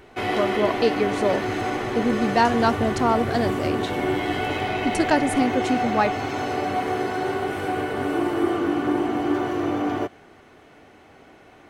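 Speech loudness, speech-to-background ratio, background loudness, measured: -24.0 LUFS, 1.0 dB, -25.0 LUFS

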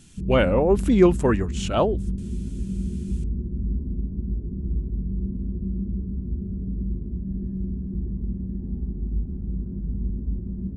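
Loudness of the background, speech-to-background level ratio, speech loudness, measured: -30.0 LUFS, 9.0 dB, -21.0 LUFS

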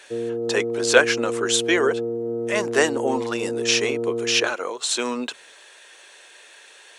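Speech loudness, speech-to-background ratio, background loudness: -22.5 LUFS, 4.5 dB, -27.0 LUFS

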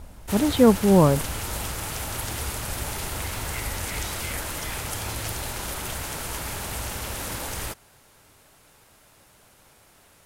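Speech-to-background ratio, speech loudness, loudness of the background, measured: 11.0 dB, -19.5 LUFS, -30.5 LUFS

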